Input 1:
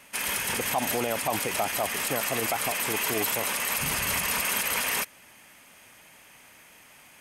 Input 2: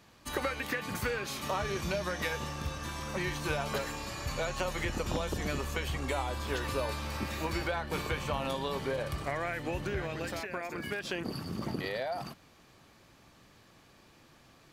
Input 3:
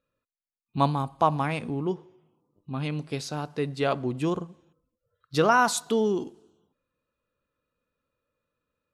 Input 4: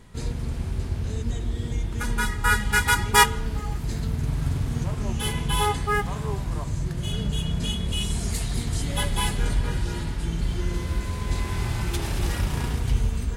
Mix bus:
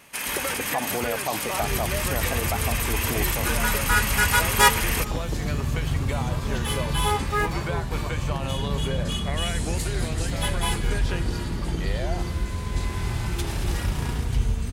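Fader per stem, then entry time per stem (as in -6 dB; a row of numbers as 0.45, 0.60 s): 0.0 dB, +1.5 dB, off, -0.5 dB; 0.00 s, 0.00 s, off, 1.45 s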